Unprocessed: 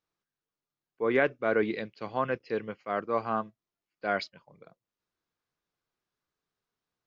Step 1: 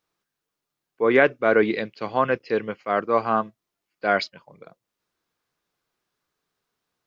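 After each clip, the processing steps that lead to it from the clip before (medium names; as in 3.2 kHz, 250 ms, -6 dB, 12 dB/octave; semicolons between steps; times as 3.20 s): bass shelf 140 Hz -5.5 dB; trim +8.5 dB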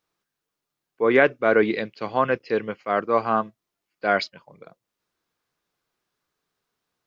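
no audible change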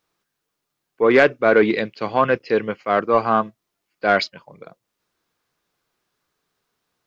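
saturation -9 dBFS, distortion -19 dB; trim +5 dB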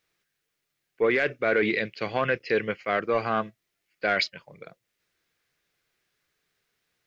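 graphic EQ 250/1000/2000 Hz -5/-9/+7 dB; peak limiter -13 dBFS, peak gain reduction 11 dB; trim -1.5 dB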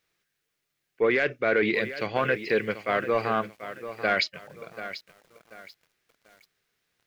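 bit-crushed delay 737 ms, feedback 35%, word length 8-bit, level -12 dB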